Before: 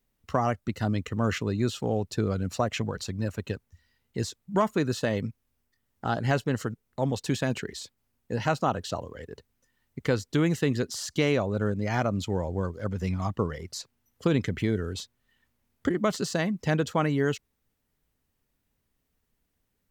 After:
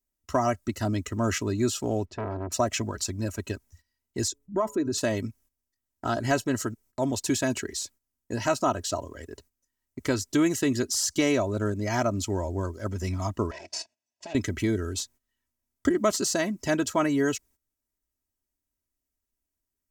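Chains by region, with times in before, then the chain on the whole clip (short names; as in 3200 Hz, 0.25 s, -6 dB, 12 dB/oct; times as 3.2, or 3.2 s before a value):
2.05–2.52 LPF 2300 Hz + core saturation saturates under 860 Hz
4.28–4.98 formant sharpening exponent 1.5 + compressor 2:1, threshold -26 dBFS + de-hum 142.1 Hz, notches 7
13.51–14.35 minimum comb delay 1.1 ms + compressor, threshold -35 dBFS + speaker cabinet 230–6800 Hz, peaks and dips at 270 Hz -6 dB, 640 Hz +9 dB, 1200 Hz -10 dB, 2500 Hz +7 dB, 4900 Hz +4 dB
whole clip: gate -55 dBFS, range -14 dB; resonant high shelf 4800 Hz +7 dB, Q 1.5; comb 3.1 ms, depth 67%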